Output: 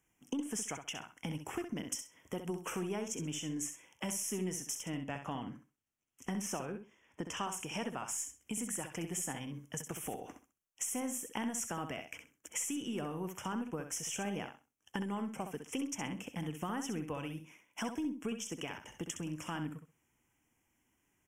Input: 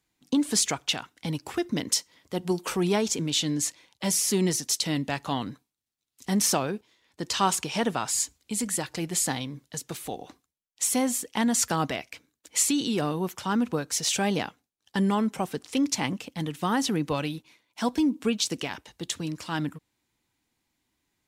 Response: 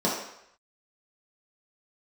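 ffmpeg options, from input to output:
-filter_complex "[0:a]asettb=1/sr,asplit=3[a][b][c];[a]atrim=end=4.834[d];[b]atrim=start=4.83:end=7.46,asetpts=PTS-STARTPTS,afade=t=in:d=0.004:c=qsin,afade=t=out:st=2.626:d=0.004:c=qsin,highshelf=f=6.3k:g=-9[e];[c]atrim=start=7.456[f];[d][e]acrossfade=d=0.004:c1=hsin:c2=qsin[g];[g][f]acrossfade=d=0.004:c1=qsin:c2=hsin,acompressor=threshold=-38dB:ratio=4,aeval=exprs='0.112*(cos(1*acos(clip(val(0)/0.112,-1,1)))-cos(1*PI/2))+0.01*(cos(2*acos(clip(val(0)/0.112,-1,1)))-cos(2*PI/2))+0.00178*(cos(8*acos(clip(val(0)/0.112,-1,1)))-cos(8*PI/2))':c=same,asuperstop=centerf=4200:order=8:qfactor=1.9,aecho=1:1:65|130|195:0.398|0.0796|0.0159"

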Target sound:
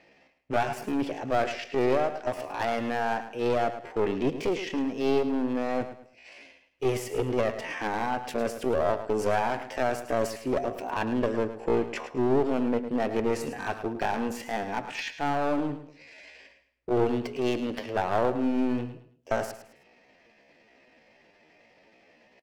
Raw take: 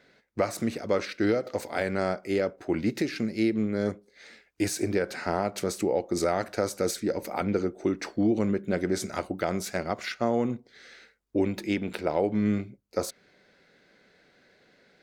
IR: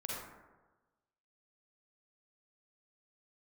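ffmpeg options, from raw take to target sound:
-af "bass=f=250:g=-1,treble=f=4k:g=-13,asetrate=53981,aresample=44100,atempo=0.816958,aeval=exprs='clip(val(0),-1,0.0355)':c=same,atempo=0.67,aecho=1:1:107|214|321:0.266|0.0825|0.0256,volume=2.5dB"

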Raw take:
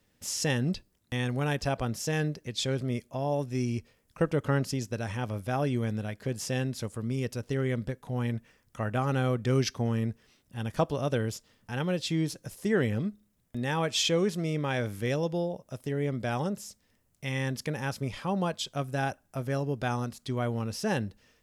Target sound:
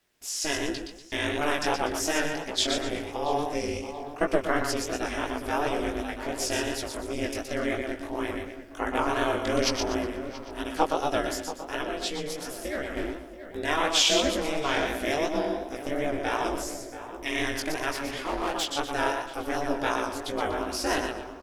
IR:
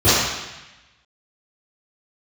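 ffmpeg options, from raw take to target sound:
-filter_complex "[0:a]asplit=2[a][b];[b]aecho=0:1:121|242|363|484:0.531|0.175|0.0578|0.0191[c];[a][c]amix=inputs=2:normalize=0,dynaudnorm=f=140:g=11:m=5.5dB,aeval=exprs='val(0)*sin(2*PI*150*n/s)':c=same,asettb=1/sr,asplit=3[d][e][f];[d]atrim=end=11.764[g];[e]atrim=start=11.76:end=12.97,asetpts=PTS-STARTPTS,afade=t=in:d=0.004:c=qsin,afade=t=out:st=1.206:d=0.004:c=qsin,acompressor=threshold=-27dB:ratio=5[h];[f]atrim=start=12.966[i];[g][h]acrossfade=d=0.004:c1=hsin:c2=qsin[j];[j][i]acrossfade=d=0.004:c1=qsin:c2=hsin,lowshelf=f=200:g=-8.5,asettb=1/sr,asplit=3[k][l][m];[k]atrim=end=17.924[n];[l]atrim=start=17.92:end=18.66,asetpts=PTS-STARTPTS,afade=t=in:d=0.004:c=qsin,afade=t=out:st=0.736:d=0.004:c=qsin,asoftclip=type=hard:threshold=-25dB[o];[m]atrim=start=18.656[p];[n][o]acrossfade=d=0.004:c1=hsin:c2=qsin[q];[q][p]acrossfade=d=0.004:c1=qsin:c2=hsin,asplit=2[r][s];[s]adelay=680,lowpass=f=1.6k:p=1,volume=-11dB,asplit=2[t][u];[u]adelay=680,lowpass=f=1.6k:p=1,volume=0.5,asplit=2[v][w];[w]adelay=680,lowpass=f=1.6k:p=1,volume=0.5,asplit=2[x][y];[y]adelay=680,lowpass=f=1.6k:p=1,volume=0.5,asplit=2[z][aa];[aa]adelay=680,lowpass=f=1.6k:p=1,volume=0.5[ab];[t][v][x][z][ab]amix=inputs=5:normalize=0[ac];[r][ac]amix=inputs=2:normalize=0,flanger=delay=15:depth=6.6:speed=2.8,equalizer=f=130:w=0.3:g=-6.5,volume=6.5dB"

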